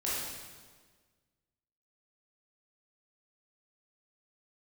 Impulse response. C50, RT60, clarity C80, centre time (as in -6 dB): -2.5 dB, 1.5 s, 1.0 dB, 0.104 s